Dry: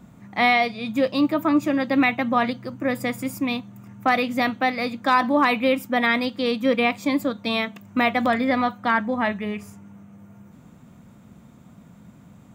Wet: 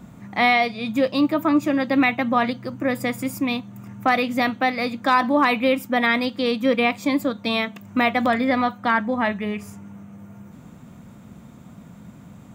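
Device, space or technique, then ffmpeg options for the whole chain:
parallel compression: -filter_complex "[0:a]asplit=2[a][b];[b]acompressor=threshold=-35dB:ratio=6,volume=-3dB[c];[a][c]amix=inputs=2:normalize=0"

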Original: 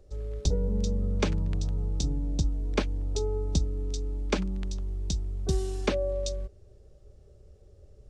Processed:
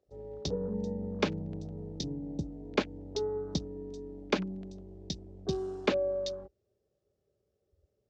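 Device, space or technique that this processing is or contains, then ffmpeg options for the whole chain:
over-cleaned archive recording: -af "highpass=170,lowpass=7k,afwtdn=0.00562"

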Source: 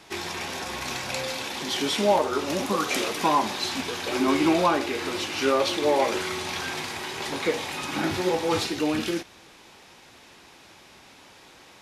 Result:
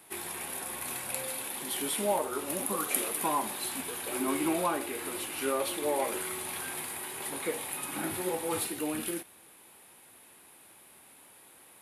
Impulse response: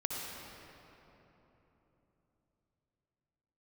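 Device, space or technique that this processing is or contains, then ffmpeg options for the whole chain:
budget condenser microphone: -af "highpass=f=120:p=1,highshelf=f=7.8k:t=q:w=3:g=12.5,volume=-8dB"

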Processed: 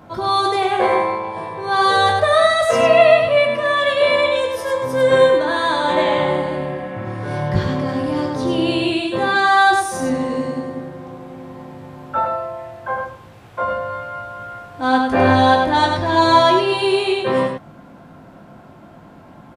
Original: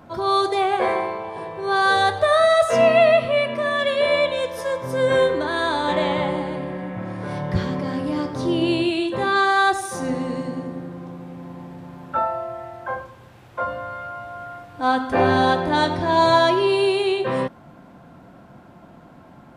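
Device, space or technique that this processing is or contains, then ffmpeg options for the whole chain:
slapback doubling: -filter_complex "[0:a]asplit=3[a][b][c];[b]adelay=19,volume=-6dB[d];[c]adelay=101,volume=-5dB[e];[a][d][e]amix=inputs=3:normalize=0,volume=2dB"

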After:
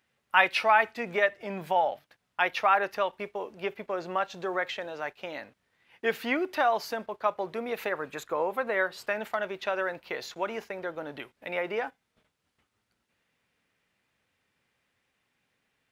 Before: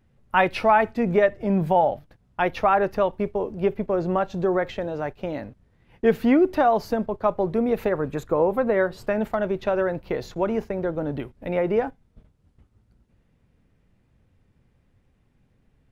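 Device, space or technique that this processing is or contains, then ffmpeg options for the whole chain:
filter by subtraction: -filter_complex "[0:a]asplit=2[a][b];[b]lowpass=2.4k,volume=-1[c];[a][c]amix=inputs=2:normalize=0,volume=1.5dB"

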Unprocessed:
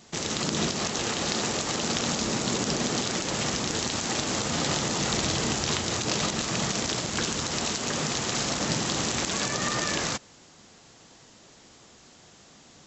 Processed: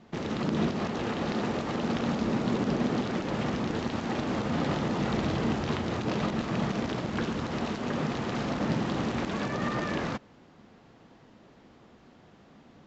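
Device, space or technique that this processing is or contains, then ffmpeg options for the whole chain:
phone in a pocket: -af "lowpass=3.4k,equalizer=f=230:t=o:w=0.75:g=4,highshelf=f=2.3k:g=-11"

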